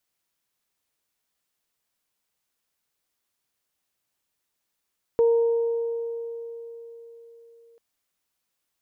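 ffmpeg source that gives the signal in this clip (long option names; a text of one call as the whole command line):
ffmpeg -f lavfi -i "aevalsrc='0.178*pow(10,-3*t/4.12)*sin(2*PI*464*t)+0.02*pow(10,-3*t/2.63)*sin(2*PI*928*t)':duration=2.59:sample_rate=44100" out.wav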